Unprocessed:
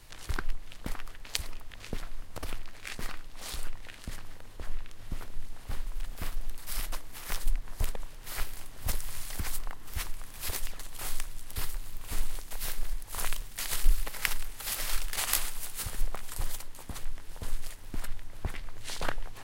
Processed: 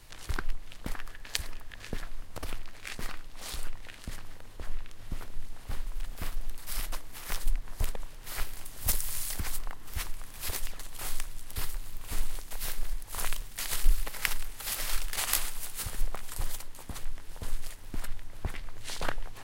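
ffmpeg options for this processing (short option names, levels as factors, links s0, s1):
-filter_complex "[0:a]asettb=1/sr,asplit=3[s0][s1][s2];[s0]atrim=end=0.934[s3];[s1]atrim=start=0.93:end=2.06,asetpts=PTS-STARTPTS,afade=t=in:d=0.004:c=qsin,afade=t=out:st=1.126:d=0.004:c=qsin,equalizer=f=1700:w=7.7:g=7.5[s4];[s2]atrim=start=2.056[s5];[s3][s4]acrossfade=d=0.004:c1=hsin:c2=qsin[s6];[s6][s5]acrossfade=d=0.004:c1=qsin:c2=hsin,asettb=1/sr,asplit=3[s7][s8][s9];[s7]atrim=end=8.654[s10];[s8]atrim=start=8.65:end=9.34,asetpts=PTS-STARTPTS,afade=t=in:d=0.004:c=qsin,afade=t=out:st=0.686:d=0.004:c=qsin,highshelf=f=4700:g=9.5[s11];[s9]atrim=start=9.336[s12];[s10][s11]acrossfade=d=0.004:c1=hsin:c2=qsin[s13];[s13][s12]acrossfade=d=0.004:c1=qsin:c2=hsin"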